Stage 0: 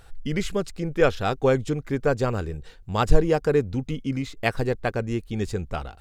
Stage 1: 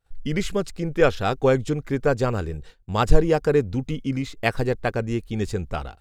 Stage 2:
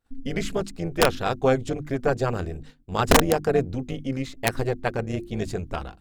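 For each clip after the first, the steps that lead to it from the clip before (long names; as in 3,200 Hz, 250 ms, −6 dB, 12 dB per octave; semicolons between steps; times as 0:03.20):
downward expander −36 dBFS; level +1.5 dB
amplitude modulation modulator 260 Hz, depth 50%; wrap-around overflow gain 8.5 dB; mains-hum notches 50/100/150/200/250/300/350 Hz; level +1 dB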